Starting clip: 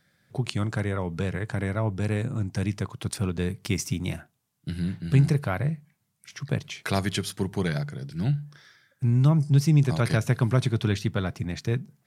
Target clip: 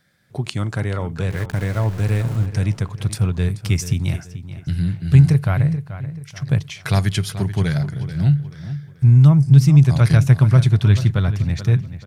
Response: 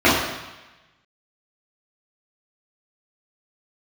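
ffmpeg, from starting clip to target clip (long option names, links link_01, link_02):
-filter_complex "[0:a]asettb=1/sr,asplit=3[link_01][link_02][link_03];[link_01]atrim=end=1.304[link_04];[link_02]atrim=start=1.3:end=2.46,asetpts=PTS-STARTPTS,afade=type=in:duration=0.004:curve=qsin,afade=type=out:start_time=1.156:duration=0.004:curve=qsin,aeval=exprs='val(0)*gte(abs(val(0)),0.0178)':channel_layout=same[link_05];[link_03]atrim=start=2.456[link_06];[link_04][link_05]acrossfade=duration=0.004:curve1=hsin:curve2=qsin[link_07];[link_07][link_06]acrossfade=duration=0.004:curve1=qsin:curve2=hsin,asubboost=boost=6:cutoff=110,asplit=2[link_08][link_09];[link_09]adelay=433,lowpass=frequency=4300:poles=1,volume=-12.5dB,asplit=2[link_10][link_11];[link_11]adelay=433,lowpass=frequency=4300:poles=1,volume=0.37,asplit=2[link_12][link_13];[link_13]adelay=433,lowpass=frequency=4300:poles=1,volume=0.37,asplit=2[link_14][link_15];[link_15]adelay=433,lowpass=frequency=4300:poles=1,volume=0.37[link_16];[link_10][link_12][link_14][link_16]amix=inputs=4:normalize=0[link_17];[link_08][link_17]amix=inputs=2:normalize=0,volume=3.5dB"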